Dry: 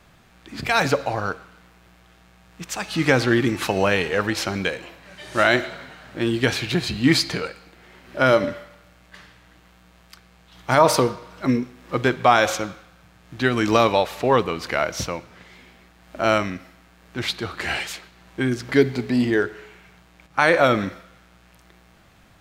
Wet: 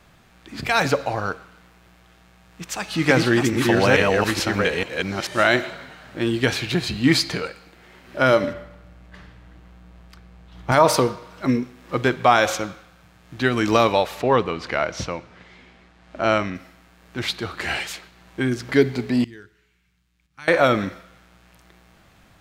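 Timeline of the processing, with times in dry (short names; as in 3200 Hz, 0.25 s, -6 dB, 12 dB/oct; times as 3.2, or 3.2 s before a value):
2.66–5.71 reverse delay 0.435 s, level -1 dB
8.53–10.72 tilt -2.5 dB/oct
14.22–16.55 air absorption 73 m
19.24–20.48 passive tone stack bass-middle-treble 6-0-2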